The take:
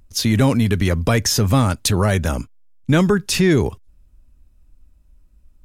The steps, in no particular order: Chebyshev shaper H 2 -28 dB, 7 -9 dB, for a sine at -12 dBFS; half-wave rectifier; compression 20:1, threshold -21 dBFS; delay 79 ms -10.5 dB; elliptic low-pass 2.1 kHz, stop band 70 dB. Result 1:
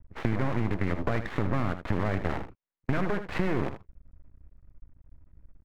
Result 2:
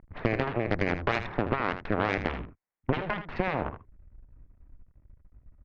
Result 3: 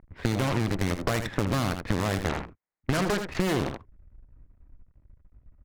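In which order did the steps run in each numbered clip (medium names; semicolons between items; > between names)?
Chebyshev shaper > elliptic low-pass > compression > half-wave rectifier > delay; compression > half-wave rectifier > elliptic low-pass > Chebyshev shaper > delay; elliptic low-pass > half-wave rectifier > Chebyshev shaper > delay > compression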